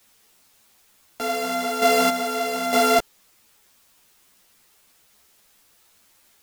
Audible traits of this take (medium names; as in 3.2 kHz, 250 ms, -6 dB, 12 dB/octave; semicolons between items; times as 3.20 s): a buzz of ramps at a fixed pitch in blocks of 64 samples; chopped level 1.1 Hz, depth 60%, duty 30%; a quantiser's noise floor 10-bit, dither triangular; a shimmering, thickened sound